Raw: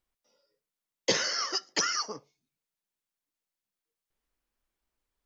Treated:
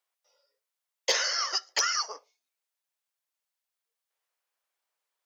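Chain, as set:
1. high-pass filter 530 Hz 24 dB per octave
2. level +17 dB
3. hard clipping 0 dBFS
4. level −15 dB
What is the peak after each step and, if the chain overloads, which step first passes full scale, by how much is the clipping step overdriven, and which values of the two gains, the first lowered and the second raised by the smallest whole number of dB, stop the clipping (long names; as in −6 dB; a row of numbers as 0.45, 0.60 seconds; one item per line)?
−13.0, +4.0, 0.0, −15.0 dBFS
step 2, 4.0 dB
step 2 +13 dB, step 4 −11 dB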